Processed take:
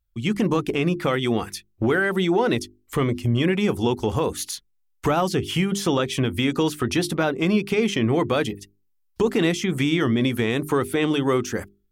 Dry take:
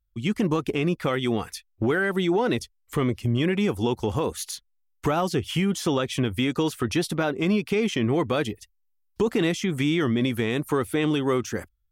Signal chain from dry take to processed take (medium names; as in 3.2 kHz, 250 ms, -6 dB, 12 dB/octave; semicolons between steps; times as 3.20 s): hum notches 50/100/150/200/250/300/350/400 Hz; trim +3 dB